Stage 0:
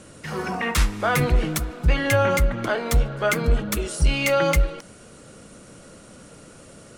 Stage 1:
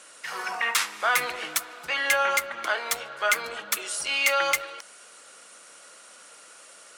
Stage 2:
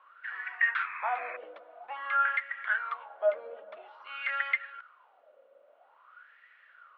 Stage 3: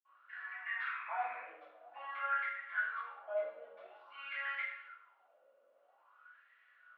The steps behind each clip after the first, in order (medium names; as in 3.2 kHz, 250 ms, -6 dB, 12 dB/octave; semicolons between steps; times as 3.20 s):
high-pass 1 kHz 12 dB/octave; trim +2 dB
wah-wah 0.5 Hz 540–1900 Hz, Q 10; painted sound noise, 0.77–1.37 s, 1–2.6 kHz -47 dBFS; elliptic band-pass 200–3400 Hz, stop band 40 dB; trim +6.5 dB
flange 0.68 Hz, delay 6.1 ms, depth 4.9 ms, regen +48%; reverberation RT60 0.70 s, pre-delay 47 ms; trim +13 dB